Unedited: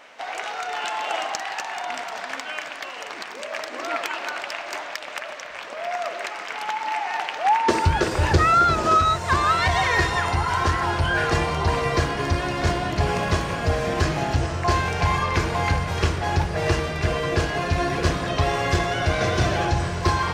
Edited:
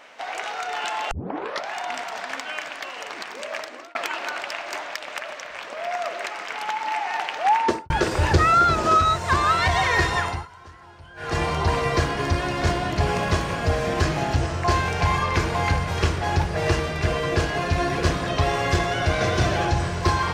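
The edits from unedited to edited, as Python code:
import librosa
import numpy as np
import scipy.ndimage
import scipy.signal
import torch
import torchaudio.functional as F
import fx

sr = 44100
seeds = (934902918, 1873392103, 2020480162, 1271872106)

y = fx.studio_fade_out(x, sr, start_s=7.62, length_s=0.28)
y = fx.edit(y, sr, fx.tape_start(start_s=1.11, length_s=0.63),
    fx.fade_out_span(start_s=3.54, length_s=0.41),
    fx.fade_down_up(start_s=10.19, length_s=1.26, db=-23.5, fade_s=0.29), tone=tone)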